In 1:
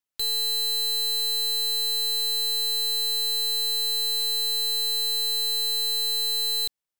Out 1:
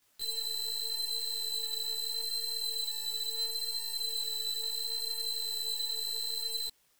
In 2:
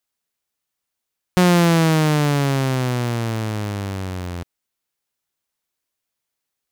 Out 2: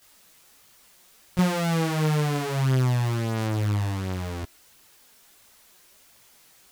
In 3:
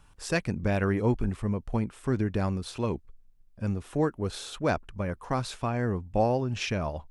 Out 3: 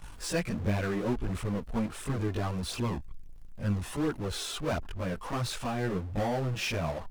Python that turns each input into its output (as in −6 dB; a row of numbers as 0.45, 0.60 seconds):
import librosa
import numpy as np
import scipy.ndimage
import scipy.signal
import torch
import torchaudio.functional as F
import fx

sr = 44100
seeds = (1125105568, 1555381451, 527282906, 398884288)

y = fx.power_curve(x, sr, exponent=0.5)
y = fx.chorus_voices(y, sr, voices=2, hz=0.73, base_ms=19, depth_ms=3.2, mix_pct=65)
y = F.gain(torch.from_numpy(y), -7.0).numpy()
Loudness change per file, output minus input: −9.5, −6.0, −3.0 LU